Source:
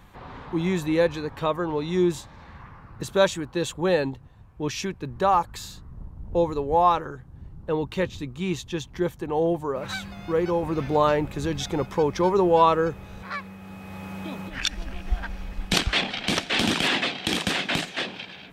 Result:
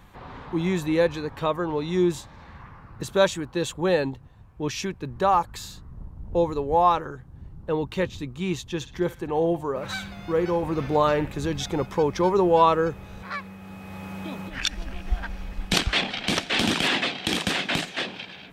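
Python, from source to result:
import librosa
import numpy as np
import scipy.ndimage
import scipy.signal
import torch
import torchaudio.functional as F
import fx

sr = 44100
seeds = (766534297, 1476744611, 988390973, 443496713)

y = fx.echo_banded(x, sr, ms=60, feedback_pct=41, hz=2300.0, wet_db=-9.5, at=(8.75, 11.35))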